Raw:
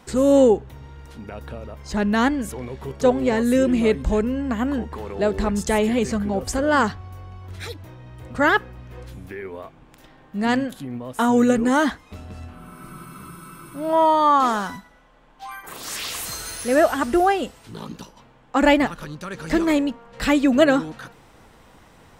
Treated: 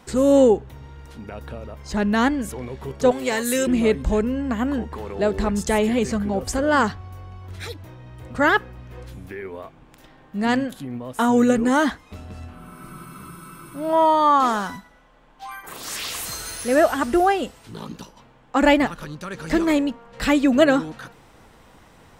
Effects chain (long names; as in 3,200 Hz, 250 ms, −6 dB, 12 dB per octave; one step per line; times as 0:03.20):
0:03.11–0:03.67: spectral tilt +3.5 dB per octave